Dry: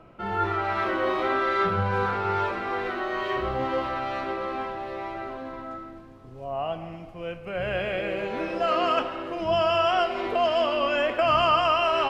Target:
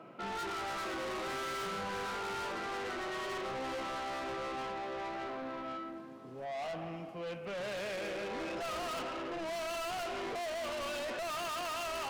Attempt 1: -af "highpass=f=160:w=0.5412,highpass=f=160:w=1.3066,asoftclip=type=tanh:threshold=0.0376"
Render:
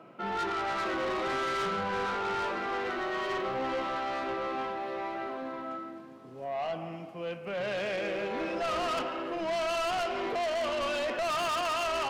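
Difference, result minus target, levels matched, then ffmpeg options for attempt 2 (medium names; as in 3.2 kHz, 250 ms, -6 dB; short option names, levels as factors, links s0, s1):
saturation: distortion -4 dB
-af "highpass=f=160:w=0.5412,highpass=f=160:w=1.3066,asoftclip=type=tanh:threshold=0.0141"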